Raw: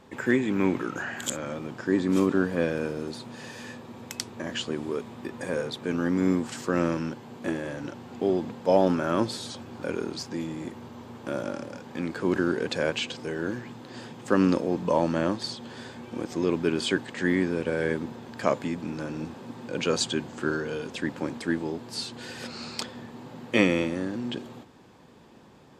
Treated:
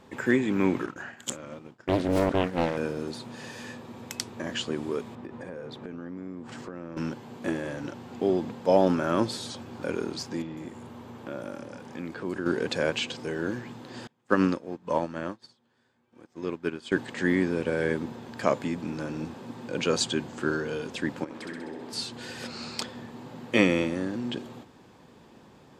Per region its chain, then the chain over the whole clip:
0.86–2.77 expander -28 dBFS + Doppler distortion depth 0.96 ms
5.15–6.97 LPF 1500 Hz 6 dB/oct + compressor, threshold -35 dBFS
10.42–12.46 compressor 1.5:1, threshold -40 dBFS + bands offset in time lows, highs 0.15 s, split 5100 Hz
14.07–16.92 bell 1500 Hz +4.5 dB 1.2 oct + upward expander 2.5:1, over -38 dBFS
21.24–21.93 tone controls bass -7 dB, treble -7 dB + compressor 5:1, threshold -36 dBFS + flutter echo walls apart 11.1 m, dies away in 1.1 s
whole clip: dry

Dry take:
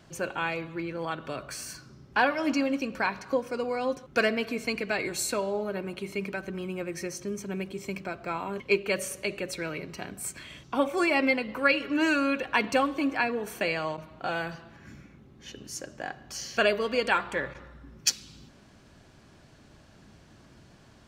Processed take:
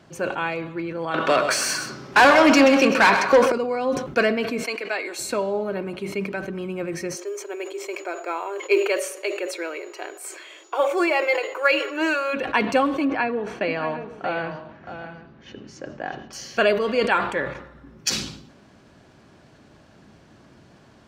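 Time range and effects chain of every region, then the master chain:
1.14–3.52 overdrive pedal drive 24 dB, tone 7400 Hz, clips at -10.5 dBFS + echo 0.128 s -9.5 dB
4.63–5.19 HPF 280 Hz 24 dB/oct + low shelf 380 Hz -11 dB
7.15–12.33 brick-wall FIR high-pass 310 Hz + whine 6900 Hz -57 dBFS + short-mantissa float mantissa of 4-bit
13.05–16.33 air absorption 150 m + tapped delay 0.63/0.755 s -10/-17.5 dB
whole clip: HPF 340 Hz 6 dB/oct; tilt -2 dB/oct; sustainer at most 77 dB/s; gain +5 dB

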